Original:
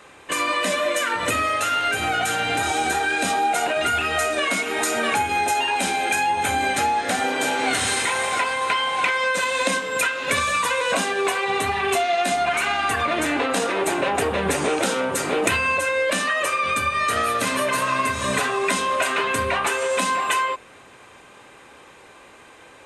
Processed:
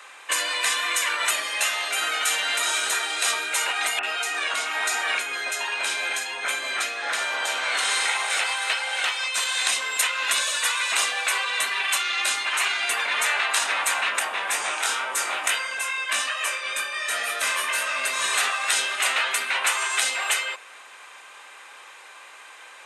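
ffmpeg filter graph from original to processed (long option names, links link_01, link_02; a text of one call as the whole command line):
ffmpeg -i in.wav -filter_complex "[0:a]asettb=1/sr,asplit=3[link_01][link_02][link_03];[link_01]atrim=end=3.994[link_04];[link_02]atrim=start=3.99:end=8.3,asetpts=PTS-STARTPTS,afade=type=in:duration=0.004:curve=qsin,afade=type=out:start_time=4.306:duration=0.004:curve=qsin,lowpass=frequency=3700:poles=1,acrossover=split=2100[link_05][link_06];[link_06]adelay=40[link_07];[link_05][link_07]amix=inputs=2:normalize=0,atrim=end_sample=190071[link_08];[link_03]atrim=start=8.296[link_09];[link_04][link_08]acrossfade=duration=0.004:curve1=hsin:curve2=qsin[link_10];[link_10][link_09]acrossfade=duration=0.004:curve1=qsin:curve2=hsin,asettb=1/sr,asplit=3[link_11][link_12][link_13];[link_11]atrim=end=14.194[link_14];[link_12]atrim=start=14.19:end=18.04,asetpts=PTS-STARTPTS,afade=type=in:duration=0.004:curve=qsin,afade=type=out:start_time=3.846:duration=0.004:curve=qsin,bandreject=frequency=4200:width=19,flanger=delay=20:depth=2.7:speed=2.2[link_15];[link_13]atrim=start=18.036[link_16];[link_14][link_15]acrossfade=duration=0.004:curve1=hsin:curve2=qsin[link_17];[link_17][link_16]acrossfade=duration=0.004:curve1=qsin:curve2=hsin,afftfilt=real='re*lt(hypot(re,im),0.251)':imag='im*lt(hypot(re,im),0.251)':win_size=1024:overlap=0.75,highpass=1000,volume=4.5dB" out.wav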